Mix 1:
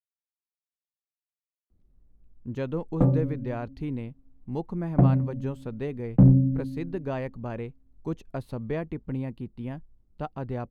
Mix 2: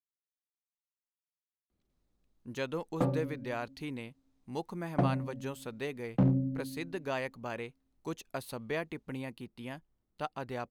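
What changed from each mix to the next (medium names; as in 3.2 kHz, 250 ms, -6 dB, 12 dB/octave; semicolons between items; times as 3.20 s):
background: remove low-pass 3.1 kHz 12 dB/octave; master: add tilt EQ +4 dB/octave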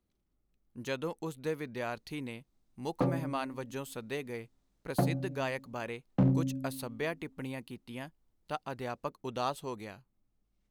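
speech: entry -1.70 s; master: add treble shelf 5.6 kHz +5 dB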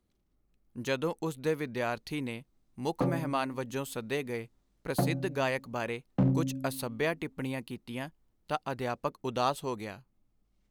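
speech +4.5 dB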